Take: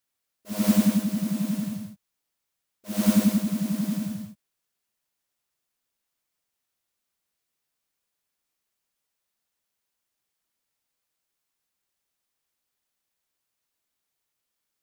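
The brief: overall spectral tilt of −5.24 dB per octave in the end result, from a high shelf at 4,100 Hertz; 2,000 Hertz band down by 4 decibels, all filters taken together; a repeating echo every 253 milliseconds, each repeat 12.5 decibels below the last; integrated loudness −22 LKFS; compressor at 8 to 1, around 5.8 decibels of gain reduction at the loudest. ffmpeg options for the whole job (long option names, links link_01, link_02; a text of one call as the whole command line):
ffmpeg -i in.wav -af "equalizer=frequency=2000:width_type=o:gain=-4.5,highshelf=frequency=4100:gain=-3,acompressor=threshold=-20dB:ratio=8,aecho=1:1:253|506|759:0.237|0.0569|0.0137,volume=6.5dB" out.wav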